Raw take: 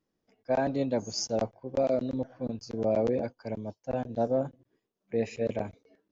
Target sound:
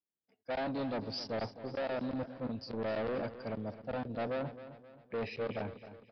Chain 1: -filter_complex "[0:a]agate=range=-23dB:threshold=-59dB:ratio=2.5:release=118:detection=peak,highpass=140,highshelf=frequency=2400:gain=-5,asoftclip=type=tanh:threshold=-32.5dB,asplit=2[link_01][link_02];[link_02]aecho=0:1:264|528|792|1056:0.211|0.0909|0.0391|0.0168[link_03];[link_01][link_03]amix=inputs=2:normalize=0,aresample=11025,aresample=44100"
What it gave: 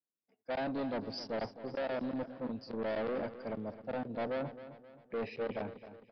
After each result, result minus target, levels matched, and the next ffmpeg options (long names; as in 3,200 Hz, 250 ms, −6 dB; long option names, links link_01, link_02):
125 Hz band −4.0 dB; 4,000 Hz band −2.5 dB
-filter_complex "[0:a]agate=range=-23dB:threshold=-59dB:ratio=2.5:release=118:detection=peak,highpass=56,highshelf=frequency=2400:gain=-5,asoftclip=type=tanh:threshold=-32.5dB,asplit=2[link_01][link_02];[link_02]aecho=0:1:264|528|792|1056:0.211|0.0909|0.0391|0.0168[link_03];[link_01][link_03]amix=inputs=2:normalize=0,aresample=11025,aresample=44100"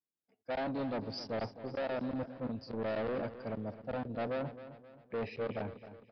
4,000 Hz band −3.0 dB
-filter_complex "[0:a]agate=range=-23dB:threshold=-59dB:ratio=2.5:release=118:detection=peak,highpass=56,highshelf=frequency=2400:gain=2.5,asoftclip=type=tanh:threshold=-32.5dB,asplit=2[link_01][link_02];[link_02]aecho=0:1:264|528|792|1056:0.211|0.0909|0.0391|0.0168[link_03];[link_01][link_03]amix=inputs=2:normalize=0,aresample=11025,aresample=44100"